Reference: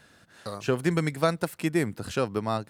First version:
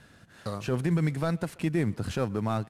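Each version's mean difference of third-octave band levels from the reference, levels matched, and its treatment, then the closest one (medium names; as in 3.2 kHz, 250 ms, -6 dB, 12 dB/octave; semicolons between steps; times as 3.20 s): 3.5 dB: CVSD coder 64 kbps; tone controls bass +7 dB, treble -4 dB; peak limiter -18 dBFS, peak gain reduction 9 dB; speakerphone echo 130 ms, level -22 dB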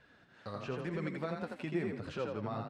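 7.0 dB: low-pass 3.3 kHz 12 dB/octave; peak limiter -21 dBFS, peak gain reduction 11 dB; flange 1 Hz, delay 1.6 ms, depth 9.2 ms, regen +40%; on a send: frequency-shifting echo 83 ms, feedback 38%, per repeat +31 Hz, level -4.5 dB; on the sum: trim -3 dB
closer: first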